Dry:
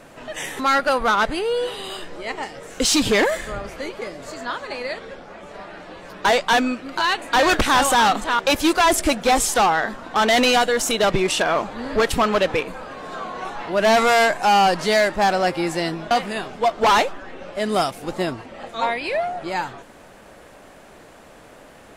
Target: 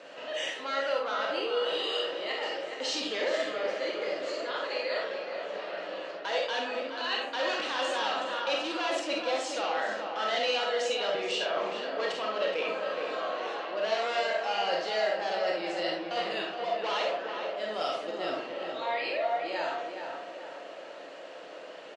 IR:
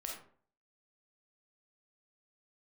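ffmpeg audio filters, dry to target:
-filter_complex "[0:a]areverse,acompressor=threshold=-29dB:ratio=6,areverse,highpass=f=220:w=0.5412,highpass=f=220:w=1.3066,equalizer=f=230:t=q:w=4:g=-9,equalizer=f=520:t=q:w=4:g=8,equalizer=f=1.7k:t=q:w=4:g=3,equalizer=f=2.9k:t=q:w=4:g=9,equalizer=f=4.3k:t=q:w=4:g=6,lowpass=f=6.6k:w=0.5412,lowpass=f=6.6k:w=1.3066,asplit=2[a][b];[b]adelay=421,lowpass=f=2.3k:p=1,volume=-5.5dB,asplit=2[c][d];[d]adelay=421,lowpass=f=2.3k:p=1,volume=0.46,asplit=2[e][f];[f]adelay=421,lowpass=f=2.3k:p=1,volume=0.46,asplit=2[g][h];[h]adelay=421,lowpass=f=2.3k:p=1,volume=0.46,asplit=2[i][j];[j]adelay=421,lowpass=f=2.3k:p=1,volume=0.46,asplit=2[k][l];[l]adelay=421,lowpass=f=2.3k:p=1,volume=0.46[m];[a][c][e][g][i][k][m]amix=inputs=7:normalize=0[n];[1:a]atrim=start_sample=2205[o];[n][o]afir=irnorm=-1:irlink=0,volume=-2.5dB"

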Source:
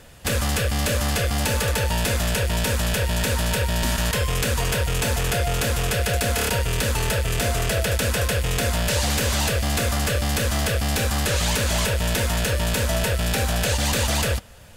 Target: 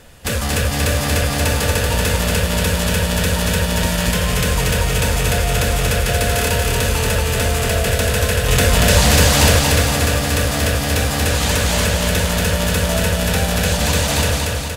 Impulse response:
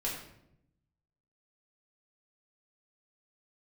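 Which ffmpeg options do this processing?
-filter_complex "[0:a]asplit=2[a][b];[1:a]atrim=start_sample=2205[c];[b][c]afir=irnorm=-1:irlink=0,volume=-13.5dB[d];[a][d]amix=inputs=2:normalize=0,asettb=1/sr,asplit=3[e][f][g];[e]atrim=end=8.484[h];[f]atrim=start=8.48:end=9.59,asetpts=PTS-STARTPTS,afade=t=in:d=0.004:c=qsin,afade=t=out:st=1.106:d=0.004:c=qsin,acontrast=31[i];[g]atrim=start=9.586[j];[h][i]acrossfade=d=0.004:c1=hsin:c2=qsin[k];[k][j]acrossfade=d=0.004:c1=qsin:c2=hsin,aecho=1:1:234|468|702|936|1170|1404|1638|1872:0.708|0.411|0.238|0.138|0.0801|0.0465|0.027|0.0156,volume=1dB"

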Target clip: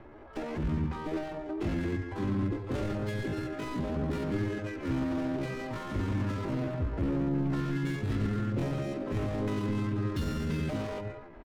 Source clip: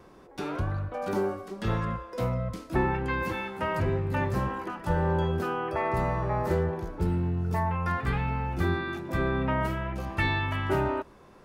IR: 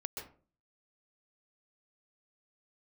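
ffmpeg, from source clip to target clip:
-filter_complex "[0:a]acrusher=bits=6:mode=log:mix=0:aa=0.000001,asplit=2[a][b];[b]adelay=280,highpass=300,lowpass=3.4k,asoftclip=type=hard:threshold=-22.5dB,volume=-21dB[c];[a][c]amix=inputs=2:normalize=0,adynamicsmooth=sensitivity=4.5:basefreq=670,lowshelf=f=130:g=4.5,aecho=1:1:4.8:0.55,asplit=2[d][e];[1:a]atrim=start_sample=2205[f];[e][f]afir=irnorm=-1:irlink=0,volume=-7dB[g];[d][g]amix=inputs=2:normalize=0,volume=27.5dB,asoftclip=hard,volume=-27.5dB,asplit=2[h][i];[i]asetrate=55563,aresample=44100,atempo=0.793701,volume=-6dB[j];[h][j]amix=inputs=2:normalize=0,flanger=delay=8.6:depth=8.3:regen=-84:speed=0.35:shape=sinusoidal,acrossover=split=370[k][l];[l]acompressor=threshold=-49dB:ratio=4[m];[k][m]amix=inputs=2:normalize=0,equalizer=f=440:t=o:w=0.45:g=-7,asetrate=70004,aresample=44100,atempo=0.629961,volume=5dB"

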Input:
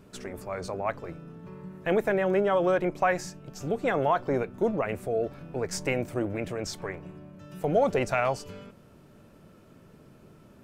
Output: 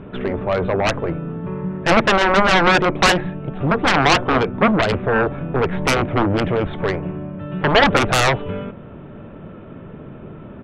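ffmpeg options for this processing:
-af "aresample=8000,aresample=44100,adynamicsmooth=sensitivity=1:basefreq=2.7k,aeval=exprs='0.224*(cos(1*acos(clip(val(0)/0.224,-1,1)))-cos(1*PI/2))+0.0398*(cos(3*acos(clip(val(0)/0.224,-1,1)))-cos(3*PI/2))+0.1*(cos(7*acos(clip(val(0)/0.224,-1,1)))-cos(7*PI/2))':c=same,volume=9dB"

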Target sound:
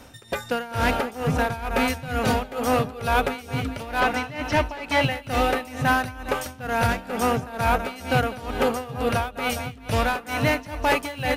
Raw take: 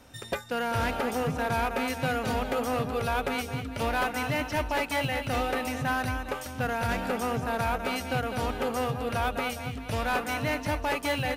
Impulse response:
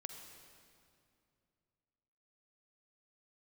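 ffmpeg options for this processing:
-filter_complex "[0:a]asettb=1/sr,asplit=3[a][b][c];[a]atrim=end=1.074[d];[b]atrim=start=1.07:end=2.19,asetpts=PTS-STARTPTS,afade=t=in:d=0.004:c=qsin,afade=t=out:st=1.116:d=0.004:c=qsin,asubboost=boost=6:cutoff=180[e];[c]atrim=start=2.186[f];[d][e]acrossfade=d=0.004:c1=hsin:c2=qsin[g];[g][f]acrossfade=d=0.004:c1=qsin:c2=hsin,asettb=1/sr,asplit=3[h][i][j];[h]atrim=end=4.004[k];[i]atrim=start=4:end=5.11,asetpts=PTS-STARTPTS,afade=t=in:d=0.004:c=qsin,afade=t=out:st=1.106:d=0.004:c=qsin,acrossover=split=6300[l][m];[m]acompressor=threshold=-56dB:ratio=4:attack=1:release=60[n];[l][n]amix=inputs=2:normalize=0[o];[j]atrim=start=5.106[p];[k][o]acrossfade=d=0.004:c1=hsin:c2=qsin[q];[q][p]acrossfade=d=0.004:c1=qsin:c2=hsin,tremolo=f=2.2:d=0.87,volume=8.5dB"

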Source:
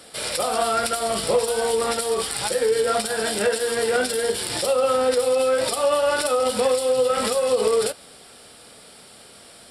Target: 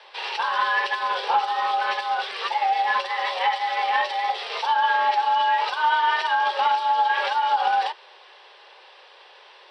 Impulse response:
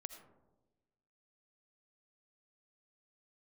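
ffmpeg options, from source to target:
-af "afreqshift=340,aeval=exprs='0.398*(cos(1*acos(clip(val(0)/0.398,-1,1)))-cos(1*PI/2))+0.02*(cos(2*acos(clip(val(0)/0.398,-1,1)))-cos(2*PI/2))':c=same,highpass=f=160:w=0.5412,highpass=f=160:w=1.3066,equalizer=f=340:t=q:w=4:g=4,equalizer=f=690:t=q:w=4:g=-4,equalizer=f=2.9k:t=q:w=4:g=5,lowpass=f=3.8k:w=0.5412,lowpass=f=3.8k:w=1.3066"

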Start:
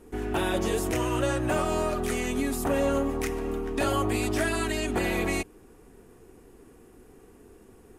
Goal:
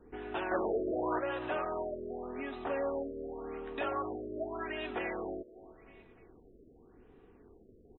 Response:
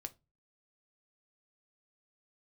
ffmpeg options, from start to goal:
-filter_complex "[0:a]asettb=1/sr,asplit=3[a][b][c];[a]atrim=end=0.514[d];[b]atrim=start=0.51:end=1.19,asetpts=PTS-STARTPTS,afade=t=in:d=0.004:c=qsin,afade=t=out:st=0.676:d=0.004:c=qsin,aeval=exprs='0.168*(cos(1*acos(clip(val(0)/0.168,-1,1)))-cos(1*PI/2))+0.075*(cos(5*acos(clip(val(0)/0.168,-1,1)))-cos(5*PI/2))':c=same[e];[c]atrim=start=1.186[f];[d][e]acrossfade=d=0.004:c1=hsin:c2=qsin[g];[g][f]acrossfade=d=0.004:c1=qsin:c2=hsin,acrossover=split=340|7600[h][i][j];[h]acompressor=threshold=-45dB:ratio=6[k];[i]aecho=1:1:300|600|900|1200:0.15|0.0718|0.0345|0.0165[l];[k][l][j]amix=inputs=3:normalize=0,afftfilt=real='re*lt(b*sr/1024,640*pow(4100/640,0.5+0.5*sin(2*PI*0.87*pts/sr)))':imag='im*lt(b*sr/1024,640*pow(4100/640,0.5+0.5*sin(2*PI*0.87*pts/sr)))':win_size=1024:overlap=0.75,volume=-6.5dB"

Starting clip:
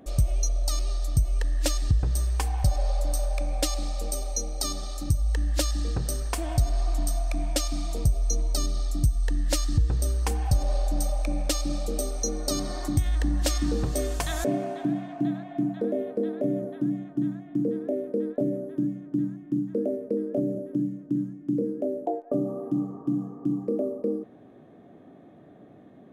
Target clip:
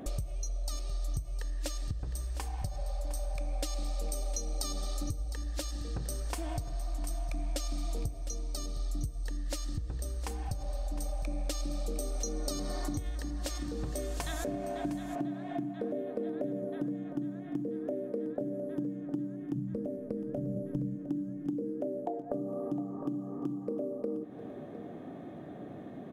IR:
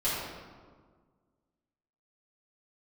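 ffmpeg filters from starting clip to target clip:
-filter_complex "[0:a]acompressor=threshold=-38dB:ratio=12,asplit=3[a][b][c];[a]afade=t=out:st=19.54:d=0.02[d];[b]asubboost=boost=6.5:cutoff=130,afade=t=in:st=19.54:d=0.02,afade=t=out:st=20.94:d=0.02[e];[c]afade=t=in:st=20.94:d=0.02[f];[d][e][f]amix=inputs=3:normalize=0,aecho=1:1:709:0.224,asplit=2[g][h];[1:a]atrim=start_sample=2205[i];[h][i]afir=irnorm=-1:irlink=0,volume=-26dB[j];[g][j]amix=inputs=2:normalize=0,volume=5.5dB"

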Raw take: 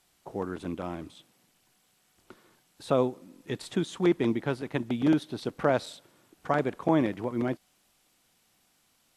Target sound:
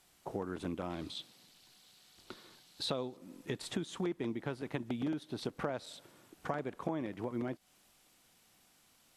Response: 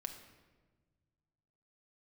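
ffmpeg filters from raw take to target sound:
-filter_complex "[0:a]asettb=1/sr,asplit=3[a][b][c];[a]atrim=end=0.904[d];[b]atrim=start=0.9:end=3.17,asetpts=PTS-STARTPTS,afade=t=in:d=0.004:c=qsin,afade=t=out:st=2.266:d=0.004:c=qsin,equalizer=f=4.1k:t=o:w=0.8:g=12[e];[c]atrim=start=3.166[f];[d][e]acrossfade=d=0.004:c1=hsin:c2=qsin[g];[g][f]acrossfade=d=0.004:c1=qsin:c2=hsin,acompressor=threshold=-35dB:ratio=6,volume=1dB"

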